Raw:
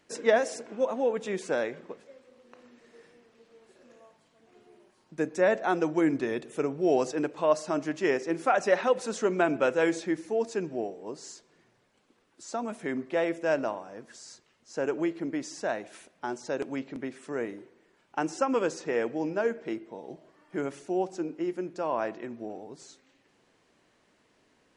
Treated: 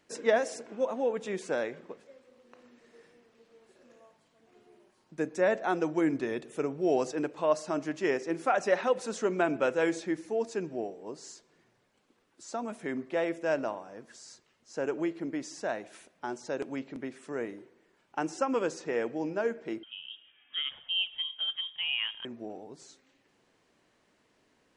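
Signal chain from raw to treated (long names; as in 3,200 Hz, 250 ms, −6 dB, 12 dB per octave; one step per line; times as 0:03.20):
0:19.83–0:22.25: voice inversion scrambler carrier 3,500 Hz
level −2.5 dB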